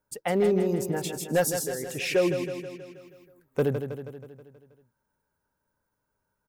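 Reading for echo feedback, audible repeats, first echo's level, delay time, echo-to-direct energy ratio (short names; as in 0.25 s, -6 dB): 58%, 6, -8.0 dB, 0.16 s, -6.0 dB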